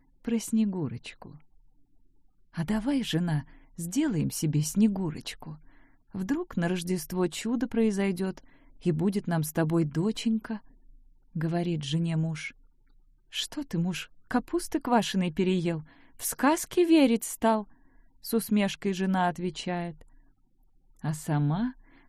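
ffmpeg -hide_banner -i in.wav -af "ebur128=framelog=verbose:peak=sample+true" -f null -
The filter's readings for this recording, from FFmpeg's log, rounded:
Integrated loudness:
  I:         -28.7 LUFS
  Threshold: -39.6 LUFS
Loudness range:
  LRA:         5.7 LU
  Threshold: -49.6 LUFS
  LRA low:   -32.2 LUFS
  LRA high:  -26.6 LUFS
Sample peak:
  Peak:       -9.7 dBFS
True peak:
  Peak:       -9.7 dBFS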